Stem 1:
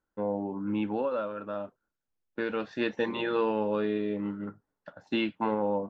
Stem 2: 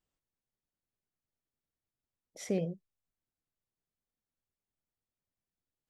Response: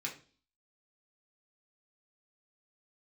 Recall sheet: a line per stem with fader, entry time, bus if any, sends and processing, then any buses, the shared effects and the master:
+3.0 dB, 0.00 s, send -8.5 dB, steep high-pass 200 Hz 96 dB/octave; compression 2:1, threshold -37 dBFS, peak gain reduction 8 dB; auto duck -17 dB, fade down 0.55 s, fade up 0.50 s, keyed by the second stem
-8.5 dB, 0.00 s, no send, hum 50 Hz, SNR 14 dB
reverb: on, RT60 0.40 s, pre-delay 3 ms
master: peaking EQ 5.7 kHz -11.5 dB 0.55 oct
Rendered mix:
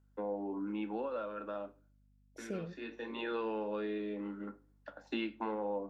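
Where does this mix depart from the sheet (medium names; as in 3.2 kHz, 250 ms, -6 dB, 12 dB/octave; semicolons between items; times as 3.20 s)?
stem 1 +3.0 dB -> -3.0 dB; master: missing peaking EQ 5.7 kHz -11.5 dB 0.55 oct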